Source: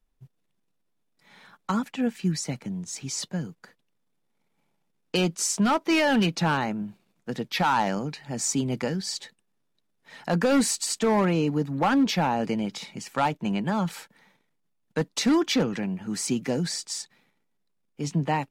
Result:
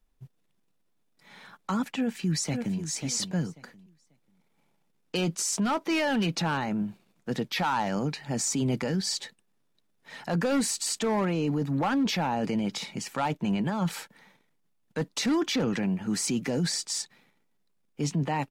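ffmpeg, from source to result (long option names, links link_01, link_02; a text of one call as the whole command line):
ffmpeg -i in.wav -filter_complex "[0:a]asplit=2[link_01][link_02];[link_02]afade=type=in:start_time=1.9:duration=0.01,afade=type=out:start_time=2.78:duration=0.01,aecho=0:1:540|1080|1620:0.298538|0.0597077|0.0119415[link_03];[link_01][link_03]amix=inputs=2:normalize=0,alimiter=limit=-23dB:level=0:latency=1:release=10,volume=2.5dB" out.wav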